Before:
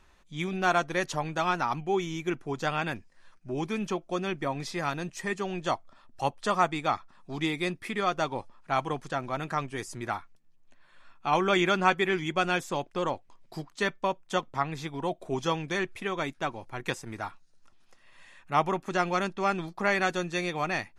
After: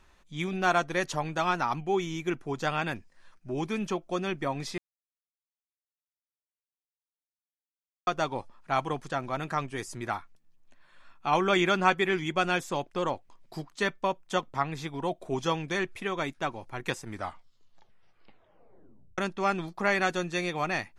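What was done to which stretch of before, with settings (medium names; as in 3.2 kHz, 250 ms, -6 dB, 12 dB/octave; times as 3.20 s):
4.78–8.07 s: mute
17.05 s: tape stop 2.13 s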